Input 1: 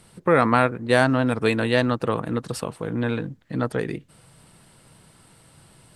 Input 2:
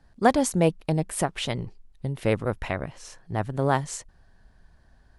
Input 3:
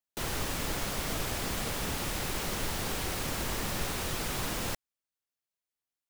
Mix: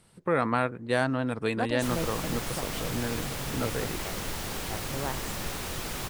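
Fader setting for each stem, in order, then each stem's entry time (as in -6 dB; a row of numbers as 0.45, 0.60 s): -8.0, -12.5, -1.0 dB; 0.00, 1.35, 1.65 s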